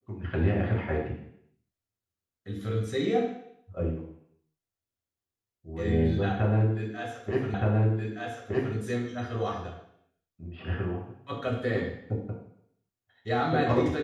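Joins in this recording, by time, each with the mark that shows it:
7.54 repeat of the last 1.22 s

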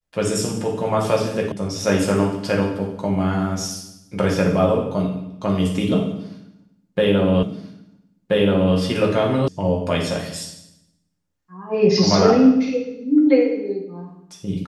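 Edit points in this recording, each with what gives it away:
1.52 sound cut off
7.43 repeat of the last 1.33 s
9.48 sound cut off

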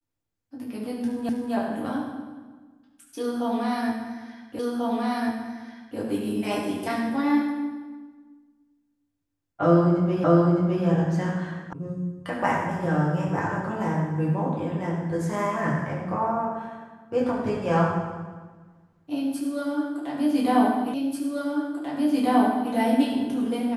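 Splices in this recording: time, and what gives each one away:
1.29 repeat of the last 0.25 s
4.59 repeat of the last 1.39 s
10.24 repeat of the last 0.61 s
11.73 sound cut off
20.94 repeat of the last 1.79 s

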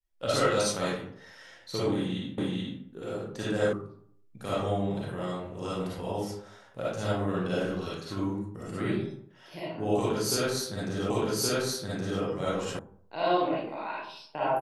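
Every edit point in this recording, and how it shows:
2.38 repeat of the last 0.43 s
3.73 sound cut off
11.1 repeat of the last 1.12 s
12.79 sound cut off

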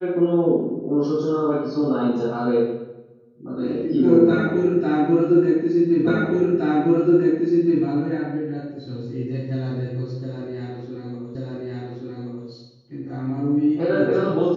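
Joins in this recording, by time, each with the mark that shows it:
6.07 repeat of the last 1.77 s
11.35 repeat of the last 1.13 s

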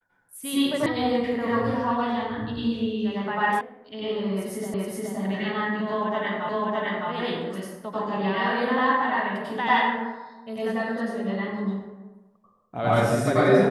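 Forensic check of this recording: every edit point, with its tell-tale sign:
0.86 sound cut off
3.61 sound cut off
4.74 repeat of the last 0.42 s
6.49 repeat of the last 0.61 s

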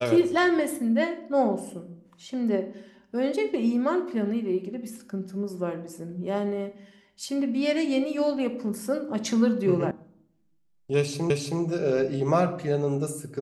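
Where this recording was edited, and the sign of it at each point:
9.91 sound cut off
11.3 repeat of the last 0.32 s

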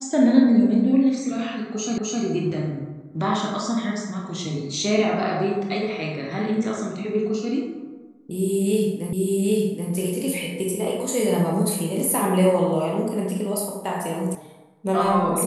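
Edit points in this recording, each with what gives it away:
1.98 repeat of the last 0.26 s
9.13 repeat of the last 0.78 s
14.35 sound cut off

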